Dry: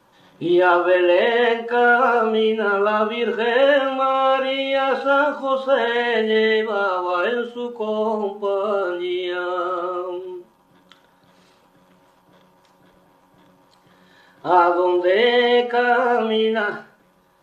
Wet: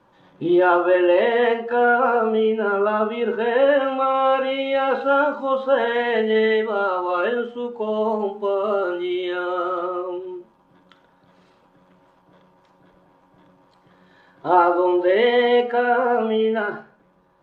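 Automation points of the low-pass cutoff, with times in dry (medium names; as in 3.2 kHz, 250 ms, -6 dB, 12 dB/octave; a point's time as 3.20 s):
low-pass 6 dB/octave
1.8 kHz
from 1.73 s 1.3 kHz
from 3.81 s 2.1 kHz
from 7.93 s 3.3 kHz
from 9.86 s 2.1 kHz
from 15.73 s 1.3 kHz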